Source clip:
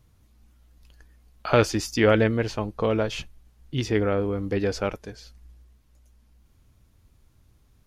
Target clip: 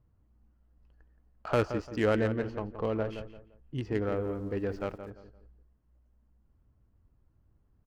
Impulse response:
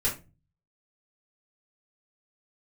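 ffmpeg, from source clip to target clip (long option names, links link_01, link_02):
-filter_complex "[0:a]equalizer=frequency=2300:width_type=o:width=0.25:gain=-5.5,bandreject=frequency=3600:width=5.5,adynamicsmooth=sensitivity=2:basefreq=1700,asplit=3[link_01][link_02][link_03];[link_01]afade=type=out:start_time=4.03:duration=0.02[link_04];[link_02]aeval=exprs='val(0)*gte(abs(val(0)),0.00266)':channel_layout=same,afade=type=in:start_time=4.03:duration=0.02,afade=type=out:start_time=5.09:duration=0.02[link_05];[link_03]afade=type=in:start_time=5.09:duration=0.02[link_06];[link_04][link_05][link_06]amix=inputs=3:normalize=0,asplit=2[link_07][link_08];[link_08]adelay=172,lowpass=frequency=1900:poles=1,volume=-9.5dB,asplit=2[link_09][link_10];[link_10]adelay=172,lowpass=frequency=1900:poles=1,volume=0.31,asplit=2[link_11][link_12];[link_12]adelay=172,lowpass=frequency=1900:poles=1,volume=0.31[link_13];[link_09][link_11][link_13]amix=inputs=3:normalize=0[link_14];[link_07][link_14]amix=inputs=2:normalize=0,volume=-7.5dB"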